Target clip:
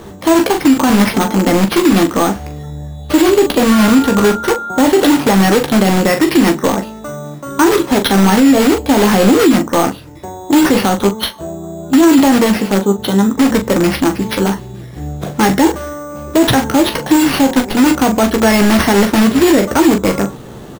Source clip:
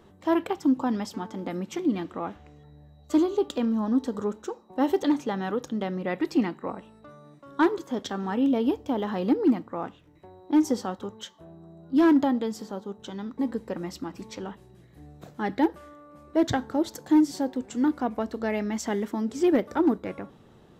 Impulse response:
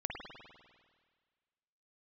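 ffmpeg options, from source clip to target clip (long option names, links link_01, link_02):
-filter_complex "[0:a]asplit=2[link_01][link_02];[link_02]aeval=exprs='(mod(21.1*val(0)+1,2)-1)/21.1':channel_layout=same,volume=-4dB[link_03];[link_01][link_03]amix=inputs=2:normalize=0,acrusher=samples=6:mix=1:aa=0.000001,asettb=1/sr,asplit=3[link_04][link_05][link_06];[link_04]atrim=end=3.724[link_07];[link_05]atrim=start=3.72:end=4.83,asetpts=PTS-STARTPTS,afade=type=in:duration=0.004:curve=qsin,afade=type=out:start_time=1.106:duration=0.004:curve=qsin,aeval=exprs='val(0)+0.0112*sin(2*PI*1400*n/s)':channel_layout=same[link_08];[link_06]atrim=start=4.826[link_09];[link_07][link_08]acrossfade=duration=0.004:curve1=hsin:curve2=qsin[link_10];[link_10][link_09]acrossfade=duration=0.004:curve1=qsin:curve2=hsin,aecho=1:1:15|41:0.422|0.355,alimiter=level_in=18dB:limit=-1dB:release=50:level=0:latency=1,volume=-1dB"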